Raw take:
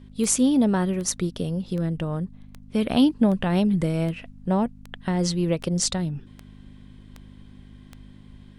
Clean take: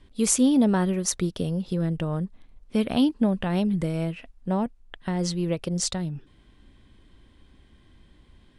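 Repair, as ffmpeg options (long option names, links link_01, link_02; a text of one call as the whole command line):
ffmpeg -i in.wav -af "adeclick=threshold=4,bandreject=frequency=50.7:width_type=h:width=4,bandreject=frequency=101.4:width_type=h:width=4,bandreject=frequency=152.1:width_type=h:width=4,bandreject=frequency=202.8:width_type=h:width=4,bandreject=frequency=253.5:width_type=h:width=4,asetnsamples=nb_out_samples=441:pad=0,asendcmd='2.82 volume volume -3dB',volume=0dB" out.wav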